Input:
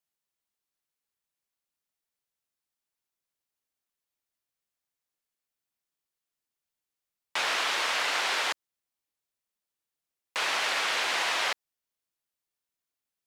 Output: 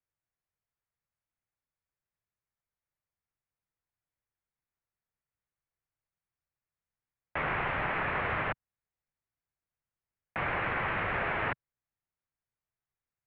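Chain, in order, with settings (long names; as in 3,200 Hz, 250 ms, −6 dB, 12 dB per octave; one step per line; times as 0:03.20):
single-sideband voice off tune −300 Hz 220–2,600 Hz
low shelf with overshoot 180 Hz +7.5 dB, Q 1.5
level −1.5 dB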